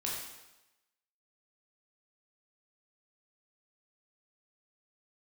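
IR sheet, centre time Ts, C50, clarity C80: 64 ms, 1.0 dB, 3.5 dB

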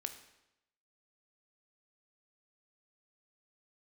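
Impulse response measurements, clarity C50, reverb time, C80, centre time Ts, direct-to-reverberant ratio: 10.5 dB, 0.85 s, 12.5 dB, 13 ms, 7.0 dB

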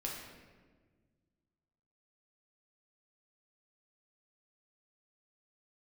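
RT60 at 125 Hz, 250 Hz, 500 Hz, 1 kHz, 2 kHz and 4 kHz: 2.4, 2.2, 1.7, 1.3, 1.2, 0.95 seconds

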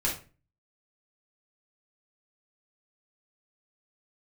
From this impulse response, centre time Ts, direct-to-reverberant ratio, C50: 27 ms, −6.0 dB, 6.5 dB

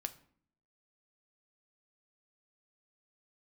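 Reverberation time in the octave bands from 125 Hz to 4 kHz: 0.80, 0.85, 0.55, 0.55, 0.50, 0.35 seconds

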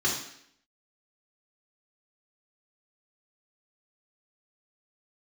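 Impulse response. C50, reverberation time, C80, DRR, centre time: 4.5 dB, 0.70 s, 8.0 dB, −5.0 dB, 38 ms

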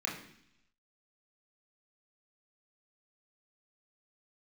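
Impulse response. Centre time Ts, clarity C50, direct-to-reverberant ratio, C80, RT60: 33 ms, 6.5 dB, −3.0 dB, 10.0 dB, 0.70 s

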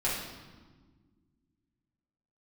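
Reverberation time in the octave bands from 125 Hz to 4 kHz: 2.5, 2.5, 1.6, 1.3, 1.1, 1.1 seconds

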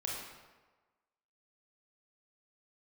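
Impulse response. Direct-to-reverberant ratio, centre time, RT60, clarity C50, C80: −3.5 dB, 75 ms, 1.3 s, 0.5 dB, 2.5 dB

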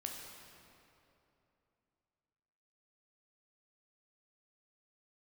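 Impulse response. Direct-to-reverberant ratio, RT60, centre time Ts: 0.5 dB, 3.0 s, 95 ms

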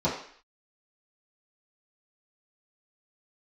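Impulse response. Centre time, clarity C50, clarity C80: 34 ms, 5.5 dB, 9.0 dB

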